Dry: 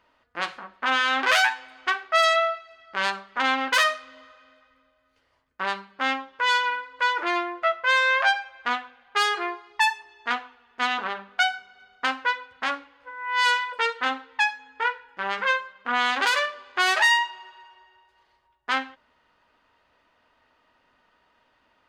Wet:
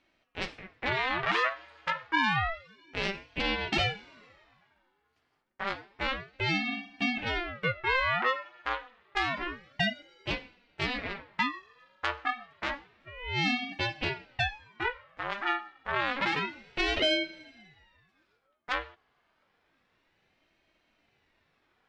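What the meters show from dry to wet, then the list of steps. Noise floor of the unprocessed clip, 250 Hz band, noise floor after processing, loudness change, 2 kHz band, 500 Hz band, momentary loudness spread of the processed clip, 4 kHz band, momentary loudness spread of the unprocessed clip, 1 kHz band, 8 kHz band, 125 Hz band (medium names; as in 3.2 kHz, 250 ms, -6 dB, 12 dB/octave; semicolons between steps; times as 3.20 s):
-67 dBFS, +2.0 dB, -74 dBFS, -7.0 dB, -8.0 dB, -5.0 dB, 11 LU, -6.0 dB, 12 LU, -8.5 dB, -15.5 dB, no reading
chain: low-pass that closes with the level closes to 3 kHz, closed at -19 dBFS; ring modulator with a swept carrier 730 Hz, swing 75%, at 0.29 Hz; trim -3.5 dB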